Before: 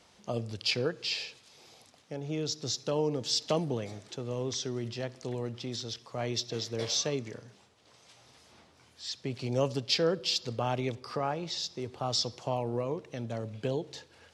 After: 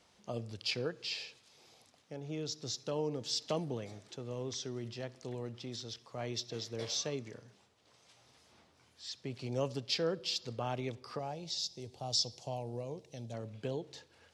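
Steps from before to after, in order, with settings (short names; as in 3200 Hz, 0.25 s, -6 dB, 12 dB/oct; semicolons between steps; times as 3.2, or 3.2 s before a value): 11.19–13.34 EQ curve 150 Hz 0 dB, 300 Hz -5 dB, 780 Hz -1 dB, 1200 Hz -14 dB, 4700 Hz +5 dB; gain -6 dB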